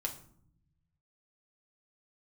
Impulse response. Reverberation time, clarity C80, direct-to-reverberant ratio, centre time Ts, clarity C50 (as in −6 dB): 0.60 s, 15.5 dB, 0.5 dB, 12 ms, 11.5 dB